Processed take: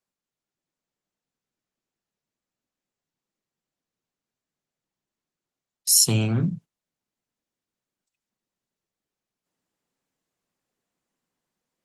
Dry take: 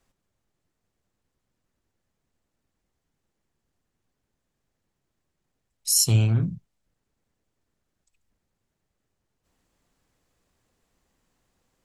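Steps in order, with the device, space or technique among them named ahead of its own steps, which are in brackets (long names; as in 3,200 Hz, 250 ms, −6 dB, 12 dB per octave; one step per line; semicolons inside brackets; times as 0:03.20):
video call (high-pass filter 140 Hz 24 dB per octave; automatic gain control gain up to 6.5 dB; noise gate −40 dBFS, range −15 dB; Opus 20 kbit/s 48,000 Hz)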